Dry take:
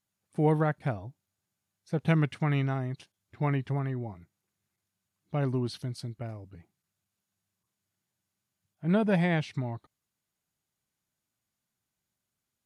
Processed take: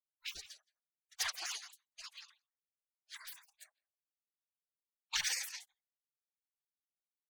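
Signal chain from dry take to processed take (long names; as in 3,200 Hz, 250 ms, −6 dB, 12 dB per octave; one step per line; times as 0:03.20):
leveller curve on the samples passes 1
noise reduction from a noise print of the clip's start 28 dB
random phases in short frames
slap from a distant wall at 50 metres, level −9 dB
dynamic equaliser 1,400 Hz, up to −5 dB, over −51 dBFS, Q 5.9
wrong playback speed 45 rpm record played at 78 rpm
gate on every frequency bin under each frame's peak −30 dB weak
downward expander −48 dBFS
automatic gain control gain up to 5 dB
level +6.5 dB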